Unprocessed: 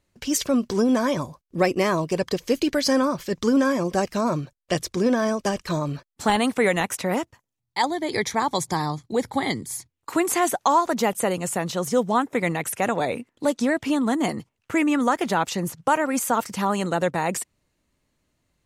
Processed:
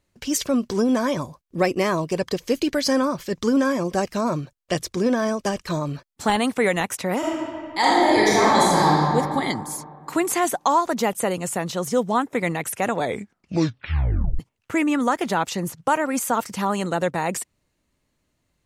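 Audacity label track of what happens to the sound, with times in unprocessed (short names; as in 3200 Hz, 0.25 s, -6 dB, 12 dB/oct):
7.180000	9.120000	reverb throw, RT60 2.3 s, DRR -7.5 dB
13.010000	13.010000	tape stop 1.38 s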